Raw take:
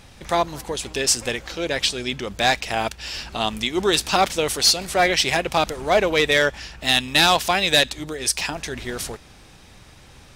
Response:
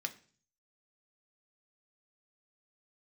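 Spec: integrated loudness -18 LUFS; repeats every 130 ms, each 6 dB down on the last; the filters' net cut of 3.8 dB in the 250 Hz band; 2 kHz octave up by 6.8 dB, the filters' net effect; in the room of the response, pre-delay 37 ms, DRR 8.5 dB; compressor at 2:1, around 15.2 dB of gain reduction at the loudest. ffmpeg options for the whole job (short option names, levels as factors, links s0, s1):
-filter_complex "[0:a]equalizer=f=250:t=o:g=-6,equalizer=f=2000:t=o:g=8.5,acompressor=threshold=0.0126:ratio=2,aecho=1:1:130|260|390|520|650|780:0.501|0.251|0.125|0.0626|0.0313|0.0157,asplit=2[s0][s1];[1:a]atrim=start_sample=2205,adelay=37[s2];[s1][s2]afir=irnorm=-1:irlink=0,volume=0.355[s3];[s0][s3]amix=inputs=2:normalize=0,volume=3.55"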